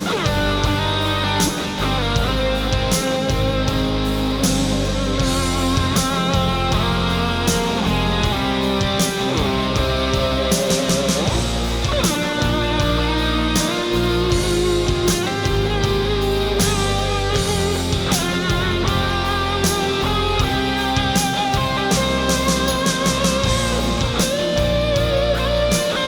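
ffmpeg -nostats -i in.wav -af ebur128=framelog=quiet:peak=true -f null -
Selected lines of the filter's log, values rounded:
Integrated loudness:
  I:         -18.7 LUFS
  Threshold: -28.6 LUFS
Loudness range:
  LRA:         1.1 LU
  Threshold: -38.7 LUFS
  LRA low:   -19.1 LUFS
  LRA high:  -18.1 LUFS
True peak:
  Peak:       -5.6 dBFS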